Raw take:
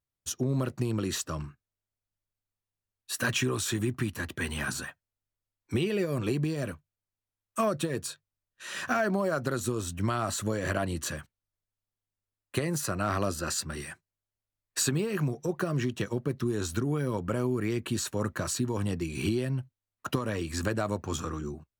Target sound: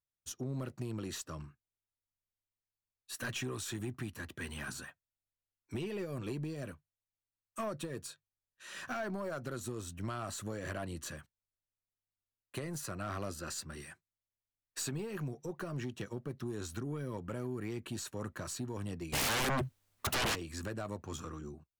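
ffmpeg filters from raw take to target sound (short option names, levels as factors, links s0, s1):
-filter_complex "[0:a]aeval=exprs='(tanh(12.6*val(0)+0.2)-tanh(0.2))/12.6':c=same,asplit=3[s0][s1][s2];[s0]afade=t=out:st=19.12:d=0.02[s3];[s1]aeval=exprs='0.0944*sin(PI/2*10*val(0)/0.0944)':c=same,afade=t=in:st=19.12:d=0.02,afade=t=out:st=20.34:d=0.02[s4];[s2]afade=t=in:st=20.34:d=0.02[s5];[s3][s4][s5]amix=inputs=3:normalize=0,volume=0.376"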